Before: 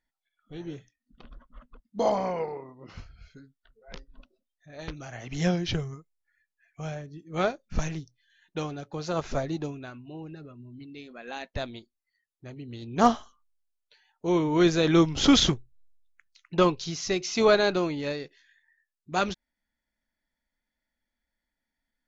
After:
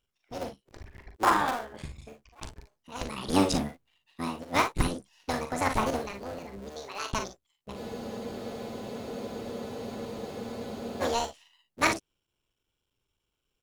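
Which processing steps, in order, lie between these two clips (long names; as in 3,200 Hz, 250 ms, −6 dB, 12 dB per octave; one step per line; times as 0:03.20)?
sub-harmonics by changed cycles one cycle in 3, muted
change of speed 1.62×
on a send: ambience of single reflections 41 ms −8 dB, 56 ms −11 dB
on the sum: frozen spectrum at 0:07.79, 3.22 s
level +3.5 dB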